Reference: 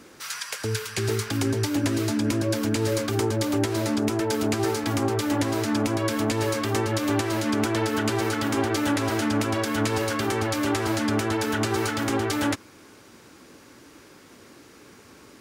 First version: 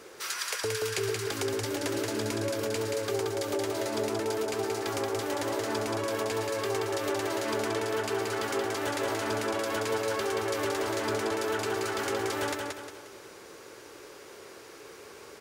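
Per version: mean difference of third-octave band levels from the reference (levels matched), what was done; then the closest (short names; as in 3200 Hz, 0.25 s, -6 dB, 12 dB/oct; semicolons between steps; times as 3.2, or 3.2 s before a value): 5.0 dB: resonant low shelf 330 Hz -6.5 dB, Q 3; compressor, threshold -29 dBFS, peak gain reduction 10.5 dB; on a send: feedback echo 0.178 s, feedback 40%, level -3.5 dB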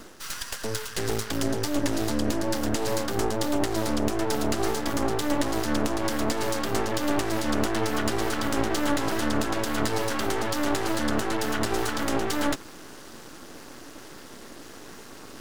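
4.0 dB: HPF 130 Hz 12 dB/oct; notch 2300 Hz, Q 5.5; reverse; upward compressor, threshold -34 dBFS; reverse; half-wave rectifier; gain +3 dB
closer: second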